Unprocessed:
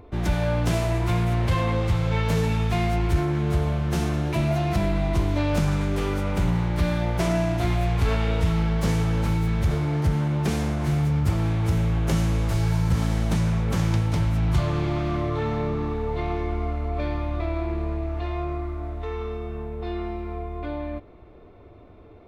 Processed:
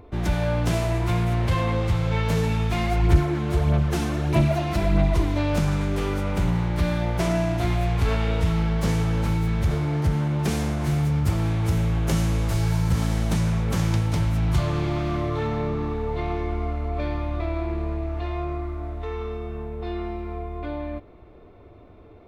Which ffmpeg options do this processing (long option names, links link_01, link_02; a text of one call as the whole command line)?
ffmpeg -i in.wav -filter_complex "[0:a]asplit=3[link_01][link_02][link_03];[link_01]afade=type=out:start_time=2.7:duration=0.02[link_04];[link_02]aphaser=in_gain=1:out_gain=1:delay=3.9:decay=0.46:speed=1.6:type=sinusoidal,afade=type=in:start_time=2.7:duration=0.02,afade=type=out:start_time=5.33:duration=0.02[link_05];[link_03]afade=type=in:start_time=5.33:duration=0.02[link_06];[link_04][link_05][link_06]amix=inputs=3:normalize=0,asettb=1/sr,asplit=3[link_07][link_08][link_09];[link_07]atrim=end=10.394[link_10];[link_08]atrim=start=10.39:end=15.47,asetpts=PTS-STARTPTS,afade=type=in:duration=0.004:curve=qsin,afade=type=out:start_time=5.076:duration=0.004:curve=qsin,highshelf=frequency=5200:gain=4[link_11];[link_09]atrim=start=15.466[link_12];[link_10][link_11]acrossfade=duration=0.004:curve1=hsin:curve2=qsin[link_13];[link_13][link_12]acrossfade=duration=0.004:curve1=qsin:curve2=hsin" out.wav